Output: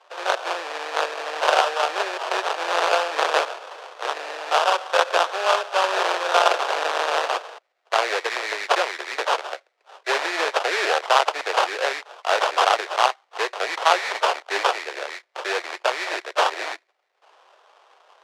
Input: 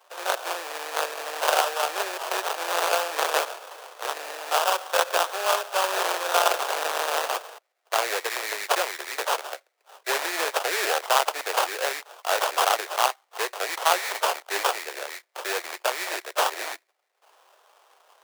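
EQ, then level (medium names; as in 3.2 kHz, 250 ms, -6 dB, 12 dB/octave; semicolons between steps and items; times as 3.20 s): low-pass 4.7 kHz 12 dB/octave; +4.0 dB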